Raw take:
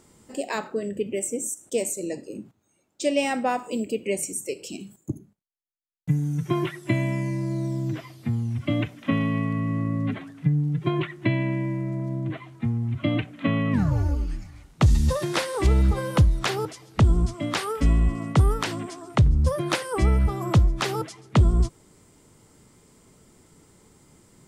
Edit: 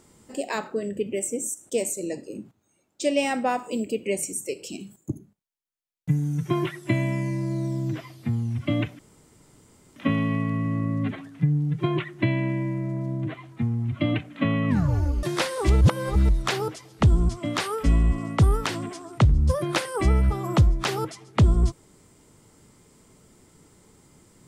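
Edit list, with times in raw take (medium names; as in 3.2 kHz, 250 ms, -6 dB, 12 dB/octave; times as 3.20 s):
8.99 s: insert room tone 0.97 s
14.26–15.20 s: delete
15.78–16.26 s: reverse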